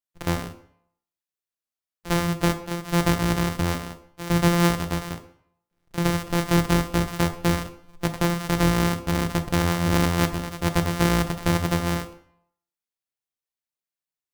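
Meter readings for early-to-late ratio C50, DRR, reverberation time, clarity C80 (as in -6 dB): 11.5 dB, 8.0 dB, 0.65 s, 14.5 dB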